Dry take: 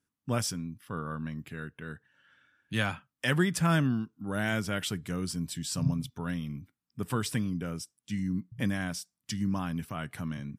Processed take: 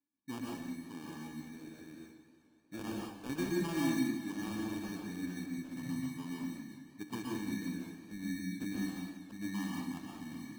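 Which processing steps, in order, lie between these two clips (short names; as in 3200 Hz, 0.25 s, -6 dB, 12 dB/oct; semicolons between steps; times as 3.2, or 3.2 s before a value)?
vowel filter u; de-hum 73.52 Hz, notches 28; sample-and-hold 22×; on a send: tape echo 0.532 s, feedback 54%, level -23 dB; on the sum: plate-style reverb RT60 0.6 s, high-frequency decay 0.8×, pre-delay 0.11 s, DRR -2 dB; warbling echo 0.181 s, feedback 62%, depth 81 cents, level -13 dB; gain +2 dB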